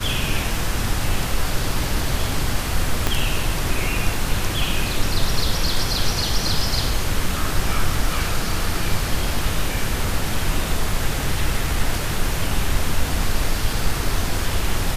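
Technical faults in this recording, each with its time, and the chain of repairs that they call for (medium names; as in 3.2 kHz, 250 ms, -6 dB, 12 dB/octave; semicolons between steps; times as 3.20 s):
3.07 s: pop -4 dBFS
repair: de-click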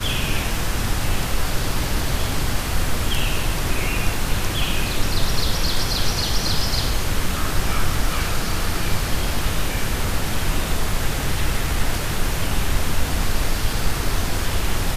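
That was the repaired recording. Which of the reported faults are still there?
3.07 s: pop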